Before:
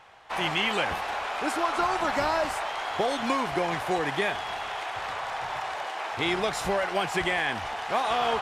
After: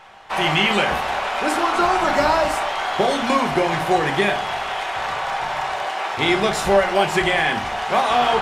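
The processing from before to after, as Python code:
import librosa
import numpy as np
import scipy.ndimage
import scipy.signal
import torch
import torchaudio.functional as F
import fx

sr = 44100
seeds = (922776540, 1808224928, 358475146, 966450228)

y = fx.room_shoebox(x, sr, seeds[0], volume_m3=300.0, walls='furnished', distance_m=1.1)
y = y * librosa.db_to_amplitude(6.5)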